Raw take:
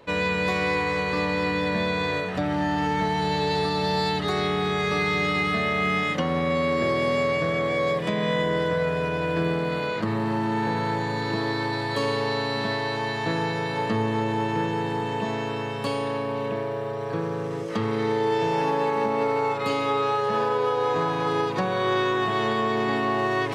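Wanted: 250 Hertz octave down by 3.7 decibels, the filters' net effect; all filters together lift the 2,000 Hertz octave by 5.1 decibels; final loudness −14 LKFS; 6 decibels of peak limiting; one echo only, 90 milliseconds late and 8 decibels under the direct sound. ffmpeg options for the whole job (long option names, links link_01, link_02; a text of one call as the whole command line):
ffmpeg -i in.wav -af "equalizer=frequency=250:width_type=o:gain=-5.5,equalizer=frequency=2000:width_type=o:gain=6,alimiter=limit=-17.5dB:level=0:latency=1,aecho=1:1:90:0.398,volume=11dB" out.wav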